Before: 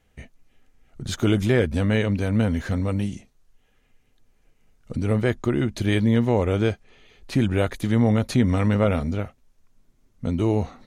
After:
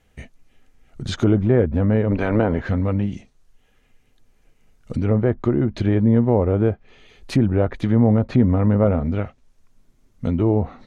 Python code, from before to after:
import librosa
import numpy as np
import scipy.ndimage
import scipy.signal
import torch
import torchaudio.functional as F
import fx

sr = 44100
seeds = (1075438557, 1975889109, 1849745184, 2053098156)

y = fx.spec_clip(x, sr, under_db=17, at=(2.1, 2.59), fade=0.02)
y = fx.env_lowpass_down(y, sr, base_hz=1000.0, full_db=-18.0)
y = y * librosa.db_to_amplitude(3.5)